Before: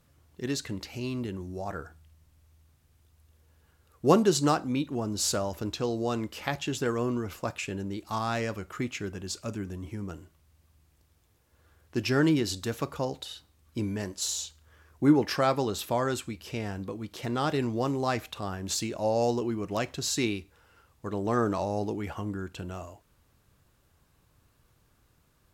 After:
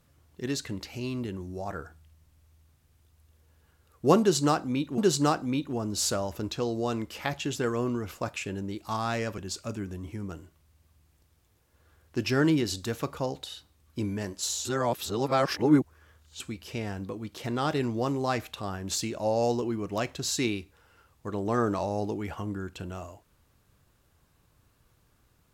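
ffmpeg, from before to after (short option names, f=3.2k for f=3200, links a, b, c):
-filter_complex "[0:a]asplit=5[a][b][c][d][e];[a]atrim=end=4.982[f];[b]atrim=start=4.198:end=8.602[g];[c]atrim=start=9.168:end=14.442[h];[d]atrim=start=14.438:end=16.192,asetpts=PTS-STARTPTS,areverse[i];[e]atrim=start=16.188[j];[f][g]acrossfade=d=0.004:c1=hsin:c2=hsin[k];[k][h]acrossfade=d=0.004:c1=hsin:c2=hsin[l];[l][i]acrossfade=d=0.004:c1=hsin:c2=hsin[m];[m][j]acrossfade=d=0.004:c1=hsin:c2=hsin"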